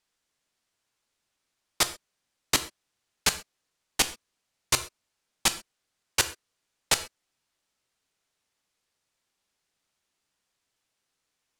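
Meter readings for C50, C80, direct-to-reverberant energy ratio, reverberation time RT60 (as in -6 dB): 14.0 dB, 18.5 dB, 10.0 dB, no single decay rate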